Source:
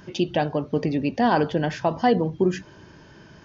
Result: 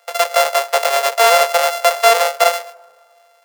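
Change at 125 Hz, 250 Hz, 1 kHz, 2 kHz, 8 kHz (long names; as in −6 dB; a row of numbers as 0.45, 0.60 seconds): below −25 dB, below −25 dB, +10.5 dB, +13.5 dB, can't be measured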